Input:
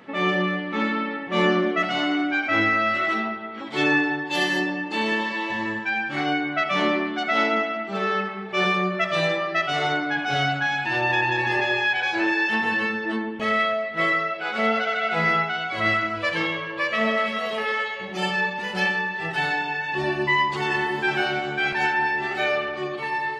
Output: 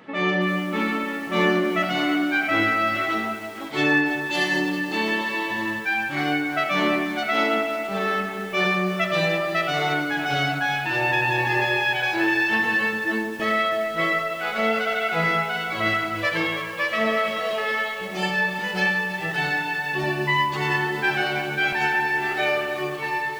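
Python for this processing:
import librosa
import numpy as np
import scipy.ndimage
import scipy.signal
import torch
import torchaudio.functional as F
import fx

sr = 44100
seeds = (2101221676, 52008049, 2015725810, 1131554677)

y = fx.room_shoebox(x, sr, seeds[0], volume_m3=3200.0, walls='mixed', distance_m=0.57)
y = fx.echo_crushed(y, sr, ms=325, feedback_pct=55, bits=6, wet_db=-12)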